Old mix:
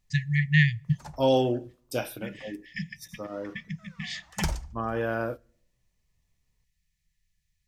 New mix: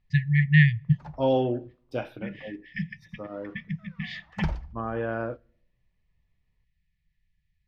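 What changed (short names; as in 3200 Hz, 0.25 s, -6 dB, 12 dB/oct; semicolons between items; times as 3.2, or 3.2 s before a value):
first voice +4.0 dB; master: add air absorption 330 m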